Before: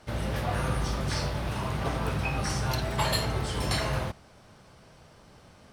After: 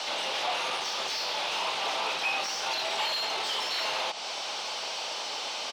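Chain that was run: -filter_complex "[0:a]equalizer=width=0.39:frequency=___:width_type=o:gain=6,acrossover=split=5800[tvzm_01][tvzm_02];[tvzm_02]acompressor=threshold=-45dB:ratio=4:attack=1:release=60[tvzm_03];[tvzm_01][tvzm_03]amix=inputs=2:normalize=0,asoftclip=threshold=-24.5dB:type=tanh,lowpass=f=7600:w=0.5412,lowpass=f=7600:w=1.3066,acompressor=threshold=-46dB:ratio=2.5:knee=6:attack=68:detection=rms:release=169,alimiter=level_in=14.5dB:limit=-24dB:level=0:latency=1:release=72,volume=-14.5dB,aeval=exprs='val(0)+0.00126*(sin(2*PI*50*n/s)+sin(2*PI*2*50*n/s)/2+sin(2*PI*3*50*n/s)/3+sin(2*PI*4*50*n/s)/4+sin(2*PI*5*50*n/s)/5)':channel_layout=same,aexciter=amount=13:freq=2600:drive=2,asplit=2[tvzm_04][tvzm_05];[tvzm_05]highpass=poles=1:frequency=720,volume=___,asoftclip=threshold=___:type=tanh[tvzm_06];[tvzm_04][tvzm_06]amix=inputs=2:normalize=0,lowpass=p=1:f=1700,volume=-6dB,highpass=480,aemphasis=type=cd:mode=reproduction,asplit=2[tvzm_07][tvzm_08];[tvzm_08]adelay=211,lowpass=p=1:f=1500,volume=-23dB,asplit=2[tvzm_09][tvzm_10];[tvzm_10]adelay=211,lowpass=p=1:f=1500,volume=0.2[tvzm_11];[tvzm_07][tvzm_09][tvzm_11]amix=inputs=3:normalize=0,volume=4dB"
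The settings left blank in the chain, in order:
850, 26dB, -18dB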